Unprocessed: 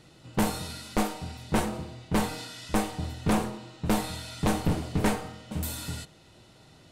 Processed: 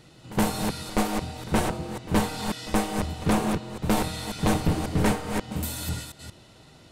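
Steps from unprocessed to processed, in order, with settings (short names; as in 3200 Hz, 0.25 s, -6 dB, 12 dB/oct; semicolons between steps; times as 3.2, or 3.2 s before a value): reverse delay 0.18 s, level -5 dB; pre-echo 72 ms -18 dB; gain +2 dB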